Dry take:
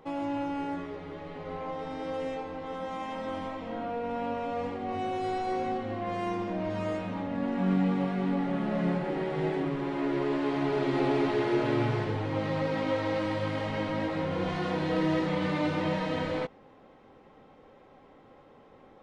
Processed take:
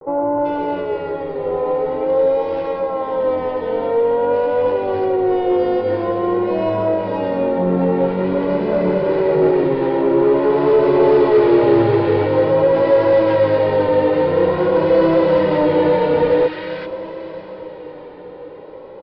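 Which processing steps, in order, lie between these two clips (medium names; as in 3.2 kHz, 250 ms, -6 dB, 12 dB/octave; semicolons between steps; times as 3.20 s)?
8.09–9.30 s: comb filter that takes the minimum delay 0.42 ms; peaking EQ 490 Hz +13.5 dB 2.9 oct; comb 2.1 ms, depth 62%; in parallel at -7 dB: wavefolder -14 dBFS; on the sum: bands offset in time lows, highs 390 ms, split 1.4 kHz; resampled via 11.025 kHz; echo that smears into a reverb 663 ms, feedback 57%, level -14.5 dB; vibrato 0.48 Hz 61 cents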